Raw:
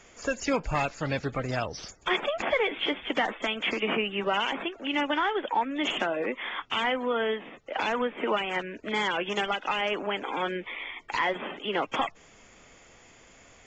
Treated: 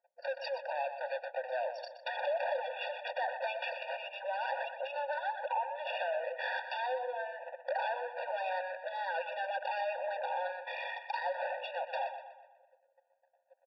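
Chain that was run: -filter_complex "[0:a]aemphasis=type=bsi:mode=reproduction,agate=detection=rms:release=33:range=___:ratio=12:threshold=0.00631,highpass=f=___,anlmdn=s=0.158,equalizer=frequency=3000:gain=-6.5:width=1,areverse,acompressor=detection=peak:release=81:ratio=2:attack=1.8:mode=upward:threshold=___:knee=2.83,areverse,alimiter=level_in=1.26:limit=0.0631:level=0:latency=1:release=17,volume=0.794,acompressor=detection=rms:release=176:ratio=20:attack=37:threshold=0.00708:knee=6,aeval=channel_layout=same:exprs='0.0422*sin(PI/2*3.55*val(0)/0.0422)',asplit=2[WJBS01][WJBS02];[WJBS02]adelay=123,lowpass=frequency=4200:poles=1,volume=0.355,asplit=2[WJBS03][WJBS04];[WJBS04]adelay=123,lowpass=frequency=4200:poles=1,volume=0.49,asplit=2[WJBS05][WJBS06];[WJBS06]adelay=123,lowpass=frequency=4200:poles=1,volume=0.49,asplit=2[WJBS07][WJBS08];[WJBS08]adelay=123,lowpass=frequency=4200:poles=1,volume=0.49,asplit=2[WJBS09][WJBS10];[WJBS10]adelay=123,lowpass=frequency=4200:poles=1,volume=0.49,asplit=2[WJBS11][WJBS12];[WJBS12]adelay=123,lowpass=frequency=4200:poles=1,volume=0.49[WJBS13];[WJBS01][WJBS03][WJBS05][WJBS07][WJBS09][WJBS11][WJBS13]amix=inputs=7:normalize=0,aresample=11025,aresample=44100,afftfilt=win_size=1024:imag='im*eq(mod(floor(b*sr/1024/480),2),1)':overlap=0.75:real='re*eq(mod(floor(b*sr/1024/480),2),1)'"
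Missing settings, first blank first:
0.0282, 300, 0.00355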